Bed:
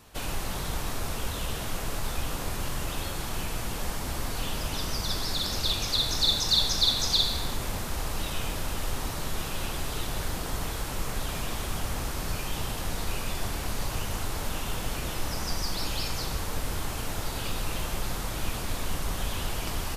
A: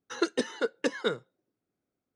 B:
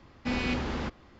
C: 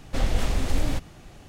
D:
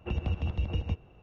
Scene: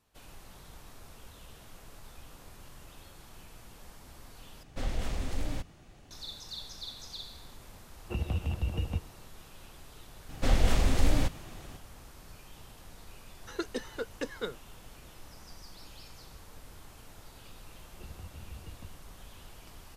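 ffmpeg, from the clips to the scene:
ffmpeg -i bed.wav -i cue0.wav -i cue1.wav -i cue2.wav -i cue3.wav -filter_complex "[3:a]asplit=2[link_01][link_02];[4:a]asplit=2[link_03][link_04];[0:a]volume=-19dB[link_05];[link_01]acontrast=47[link_06];[link_05]asplit=2[link_07][link_08];[link_07]atrim=end=4.634[link_09];[link_06]atrim=end=1.48,asetpts=PTS-STARTPTS,volume=-14.5dB[link_10];[link_08]atrim=start=6.106[link_11];[link_03]atrim=end=1.22,asetpts=PTS-STARTPTS,volume=-1.5dB,afade=type=in:duration=0.004:curve=hsin,afade=type=out:start_time=1.216:duration=0.004:curve=hsin,adelay=8040[link_12];[link_02]atrim=end=1.48,asetpts=PTS-STARTPTS,volume=-0.5dB,afade=type=in:duration=0.004:curve=hsin,afade=type=out:start_time=1.476:duration=0.004:curve=hsin,adelay=10290[link_13];[1:a]atrim=end=2.15,asetpts=PTS-STARTPTS,volume=-7.5dB,afade=type=in:duration=0.004:curve=hsin,afade=type=out:start_time=2.146:duration=0.004:curve=hsin,adelay=13370[link_14];[link_04]atrim=end=1.22,asetpts=PTS-STARTPTS,volume=-16.5dB,afade=type=in:duration=0.004:curve=hsin,afade=type=out:start_time=1.216:duration=0.004:curve=hsin,adelay=17930[link_15];[link_09][link_10]acrossfade=duration=0.004:curve1=hsin:curve2=hsin[link_16];[link_16][link_11]acrossfade=duration=0.004:curve1=hsin:curve2=hsin[link_17];[link_17][link_12][link_13][link_14][link_15]amix=inputs=5:normalize=0" out.wav

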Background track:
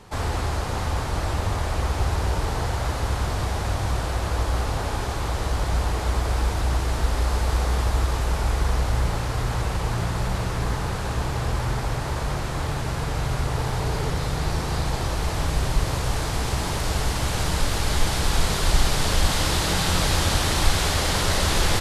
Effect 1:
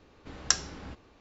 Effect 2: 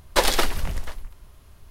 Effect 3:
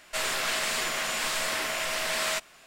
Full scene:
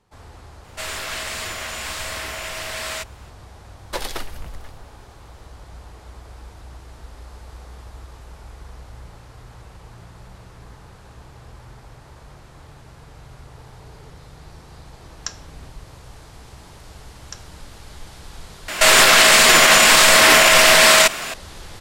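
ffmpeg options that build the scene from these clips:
ffmpeg -i bed.wav -i cue0.wav -i cue1.wav -i cue2.wav -filter_complex "[3:a]asplit=2[link_01][link_02];[1:a]asplit=2[link_03][link_04];[0:a]volume=-17.5dB[link_05];[link_02]alimiter=level_in=27dB:limit=-1dB:release=50:level=0:latency=1[link_06];[link_05]asplit=2[link_07][link_08];[link_07]atrim=end=18.684[link_09];[link_06]atrim=end=2.66,asetpts=PTS-STARTPTS,volume=-1dB[link_10];[link_08]atrim=start=21.336[link_11];[link_01]atrim=end=2.66,asetpts=PTS-STARTPTS,volume=-0.5dB,afade=type=in:duration=0.004:curve=hsin,afade=type=out:start_time=2.656:duration=0.004:curve=hsin,adelay=640[link_12];[2:a]atrim=end=1.7,asetpts=PTS-STARTPTS,volume=-8.5dB,afade=type=in:duration=0.004:curve=hsin,afade=type=out:start_time=1.696:duration=0.004:curve=hsin,adelay=166257S[link_13];[link_03]atrim=end=1.2,asetpts=PTS-STARTPTS,volume=-5.5dB,afade=type=in:duration=0.004:curve=hsin,afade=type=out:start_time=1.196:duration=0.004:curve=hsin,adelay=650916S[link_14];[link_04]atrim=end=1.2,asetpts=PTS-STARTPTS,volume=-13dB,afade=type=in:duration=0.004:curve=hsin,afade=type=out:start_time=1.196:duration=0.004:curve=hsin,adelay=16820[link_15];[link_09][link_10]acrossfade=duration=0.004:curve1=hsin:curve2=hsin[link_16];[link_16][link_11]acrossfade=duration=0.004:curve1=hsin:curve2=hsin[link_17];[link_17][link_12][link_13][link_14][link_15]amix=inputs=5:normalize=0" out.wav

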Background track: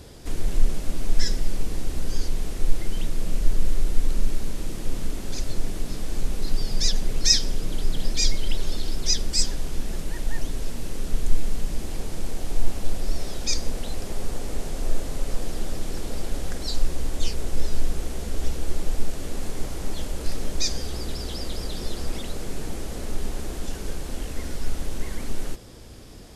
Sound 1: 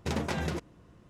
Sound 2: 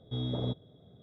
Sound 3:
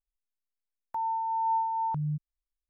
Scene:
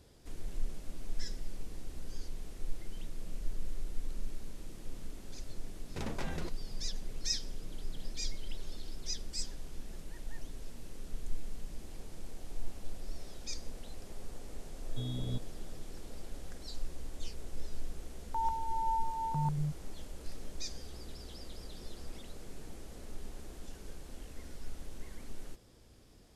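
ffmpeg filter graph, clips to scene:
ffmpeg -i bed.wav -i cue0.wav -i cue1.wav -i cue2.wav -filter_complex "[0:a]volume=-16dB[link_01];[2:a]acrossover=split=270|3000[link_02][link_03][link_04];[link_03]acompressor=threshold=-45dB:ratio=6:attack=3.2:release=140:knee=2.83:detection=peak[link_05];[link_02][link_05][link_04]amix=inputs=3:normalize=0[link_06];[3:a]aecho=1:1:107.9|142.9:0.355|0.891[link_07];[1:a]atrim=end=1.09,asetpts=PTS-STARTPTS,volume=-8.5dB,afade=type=in:duration=0.004:curve=hsin,afade=type=out:start_time=1.086:duration=0.004:curve=hsin,adelay=5900[link_08];[link_06]atrim=end=1.02,asetpts=PTS-STARTPTS,volume=-3.5dB,afade=type=in:duration=0.004:curve=hsin,afade=type=out:start_time=1.016:duration=0.004:curve=hsin,adelay=14850[link_09];[link_07]atrim=end=2.69,asetpts=PTS-STARTPTS,volume=-3dB,afade=type=in:duration=0.004:curve=hsin,afade=type=out:start_time=2.686:duration=0.004:curve=hsin,adelay=17400[link_10];[link_01][link_08][link_09][link_10]amix=inputs=4:normalize=0" out.wav

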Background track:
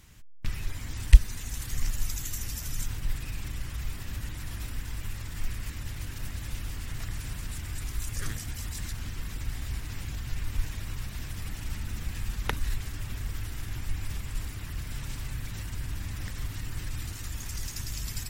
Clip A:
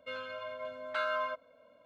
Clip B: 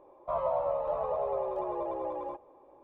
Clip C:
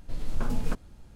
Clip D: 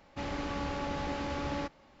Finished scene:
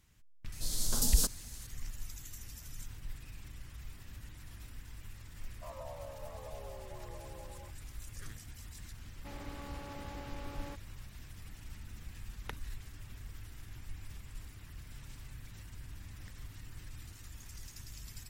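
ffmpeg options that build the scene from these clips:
ffmpeg -i bed.wav -i cue0.wav -i cue1.wav -i cue2.wav -i cue3.wav -filter_complex "[0:a]volume=-13dB[link_01];[3:a]aexciter=amount=15.9:drive=5.8:freq=3700,atrim=end=1.15,asetpts=PTS-STARTPTS,volume=-6dB,afade=type=in:duration=0.004:curve=hsin,afade=type=out:start_time=1.146:duration=0.004:curve=hsin,adelay=520[link_02];[2:a]atrim=end=2.83,asetpts=PTS-STARTPTS,volume=-17dB,afade=type=in:duration=0.004:curve=hsin,afade=type=out:start_time=2.826:duration=0.004:curve=hsin,adelay=5340[link_03];[4:a]atrim=end=2,asetpts=PTS-STARTPTS,volume=-11.5dB,afade=type=in:duration=0.004:curve=hsin,afade=type=out:start_time=1.996:duration=0.004:curve=hsin,adelay=9080[link_04];[link_01][link_02][link_03][link_04]amix=inputs=4:normalize=0" out.wav

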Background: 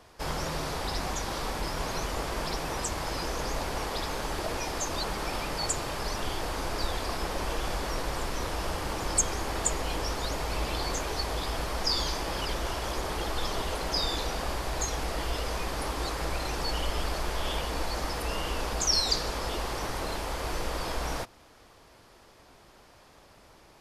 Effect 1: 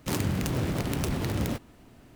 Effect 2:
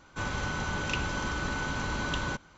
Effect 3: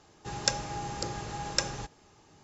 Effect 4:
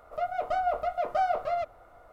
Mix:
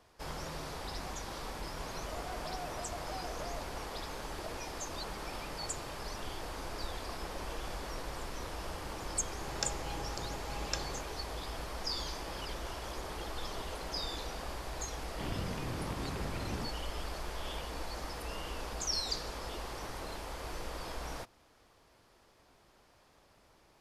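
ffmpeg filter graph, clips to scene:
ffmpeg -i bed.wav -i cue0.wav -i cue1.wav -i cue2.wav -i cue3.wav -filter_complex "[0:a]volume=-9dB[link_01];[4:a]acompressor=threshold=-38dB:ratio=6:attack=3.2:release=140:knee=1:detection=peak[link_02];[1:a]aresample=8000,aresample=44100[link_03];[link_02]atrim=end=2.12,asetpts=PTS-STARTPTS,volume=-4.5dB,afade=type=in:duration=0.004:curve=hsin,afade=type=out:start_time=2.116:duration=0.004:curve=hsin,adelay=1950[link_04];[3:a]atrim=end=2.43,asetpts=PTS-STARTPTS,volume=-9dB,afade=type=in:duration=0.004:curve=hsin,afade=type=out:start_time=2.426:duration=0.004:curve=hsin,adelay=9150[link_05];[link_03]atrim=end=2.15,asetpts=PTS-STARTPTS,volume=-11.5dB,afade=type=in:duration=0.004:curve=hsin,afade=type=out:start_time=2.146:duration=0.004:curve=hsin,adelay=15120[link_06];[link_01][link_04][link_05][link_06]amix=inputs=4:normalize=0" out.wav

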